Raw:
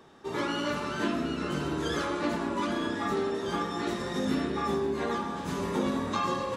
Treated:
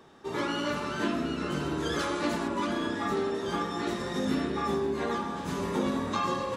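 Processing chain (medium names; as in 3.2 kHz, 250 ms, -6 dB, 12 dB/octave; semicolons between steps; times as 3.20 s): 1.99–2.48 s: treble shelf 3.7 kHz +6.5 dB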